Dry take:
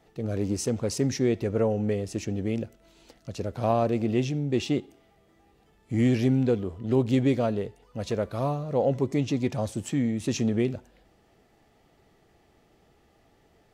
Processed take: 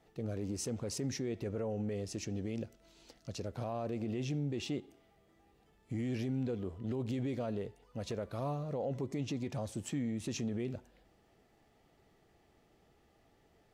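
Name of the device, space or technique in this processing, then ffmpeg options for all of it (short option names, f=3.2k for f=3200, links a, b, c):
stacked limiters: -filter_complex "[0:a]asettb=1/sr,asplit=3[a][b][c];[a]atrim=end=1.954[d];[b]atrim=start=1.95:end=3.48,asetpts=PTS-STARTPTS,afade=t=in:d=0.004:c=qsin,afade=t=out:st=1.526:d=0.004:c=qsin,equalizer=f=5.2k:t=o:w=1:g=5[e];[c]atrim=start=3.476[f];[d][e]acrossfade=d=0.004:c1=hsin:c2=qsin[g];[g][f]acrossfade=d=0.004:c1=qsin:c2=hsin,alimiter=limit=-17.5dB:level=0:latency=1:release=21,alimiter=limit=-22.5dB:level=0:latency=1:release=103,volume=-6dB"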